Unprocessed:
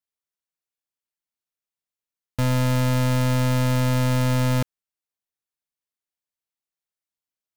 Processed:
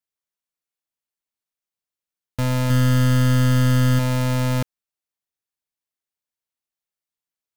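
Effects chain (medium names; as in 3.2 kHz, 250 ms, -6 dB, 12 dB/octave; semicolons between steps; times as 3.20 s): 2.66–3.99 s: doubling 40 ms -2.5 dB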